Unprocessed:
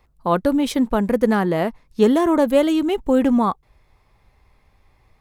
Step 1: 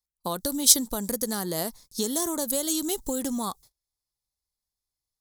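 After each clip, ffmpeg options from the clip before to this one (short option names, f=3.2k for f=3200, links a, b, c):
-af "acompressor=threshold=-21dB:ratio=8,aexciter=amount=12.3:drive=8.6:freq=4k,agate=range=-32dB:threshold=-43dB:ratio=16:detection=peak,volume=-6dB"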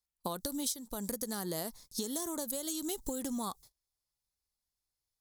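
-af "acompressor=threshold=-31dB:ratio=16,volume=-1.5dB"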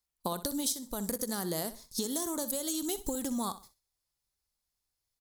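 -af "aecho=1:1:63|126|189:0.2|0.0559|0.0156,volume=3dB"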